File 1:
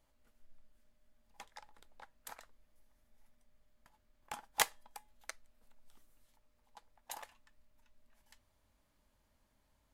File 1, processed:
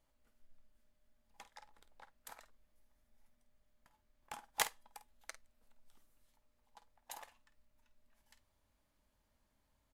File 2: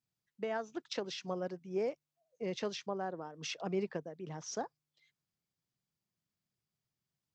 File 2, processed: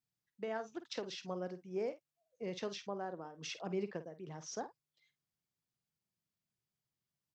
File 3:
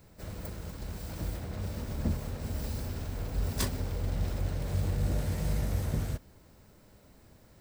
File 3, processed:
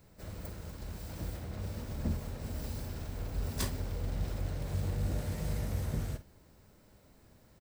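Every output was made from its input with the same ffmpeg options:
-filter_complex "[0:a]asplit=2[link_01][link_02];[link_02]adelay=50,volume=-12.5dB[link_03];[link_01][link_03]amix=inputs=2:normalize=0,volume=-3.5dB"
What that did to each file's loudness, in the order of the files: −3.0, −3.0, −3.5 LU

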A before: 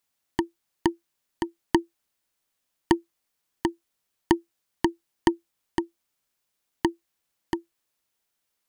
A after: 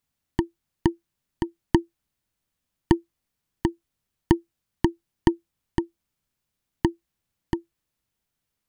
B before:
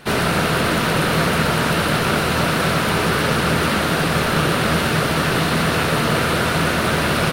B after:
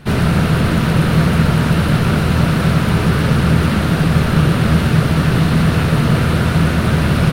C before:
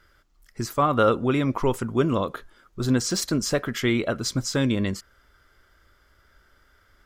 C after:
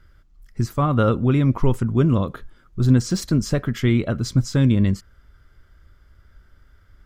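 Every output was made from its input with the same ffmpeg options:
-af "bass=frequency=250:gain=14,treble=frequency=4000:gain=-2,volume=-2.5dB"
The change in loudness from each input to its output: +1.5, +3.5, +4.0 LU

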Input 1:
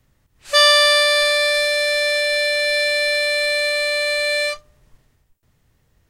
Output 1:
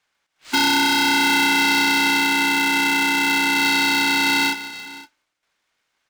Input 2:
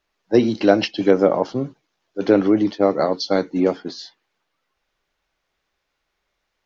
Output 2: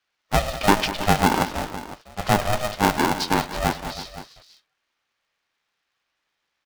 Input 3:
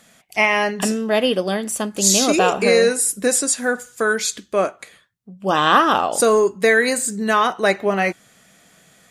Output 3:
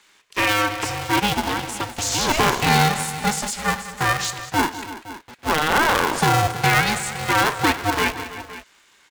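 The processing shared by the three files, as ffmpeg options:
-filter_complex "[0:a]acrossover=split=750[link_01][link_02];[link_01]acrusher=bits=5:mix=0:aa=0.000001[link_03];[link_02]alimiter=limit=-11.5dB:level=0:latency=1:release=23[link_04];[link_03][link_04]amix=inputs=2:normalize=0,highpass=470,lowpass=6000,aecho=1:1:104|197|322|513:0.112|0.188|0.178|0.158,aeval=exprs='val(0)*sgn(sin(2*PI*310*n/s))':channel_layout=same"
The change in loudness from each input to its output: −1.0, −3.5, −2.5 LU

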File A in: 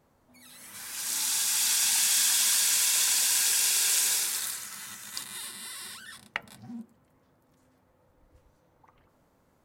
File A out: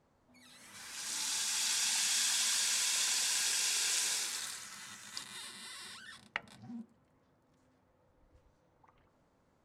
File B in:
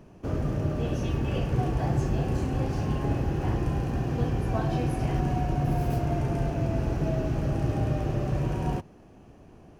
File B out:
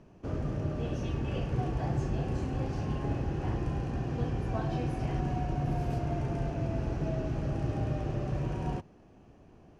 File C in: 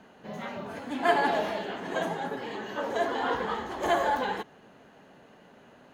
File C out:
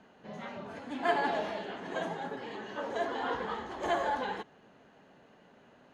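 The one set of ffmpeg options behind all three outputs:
-af "lowpass=7500,volume=-5dB"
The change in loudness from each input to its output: −8.0, −5.0, −5.0 LU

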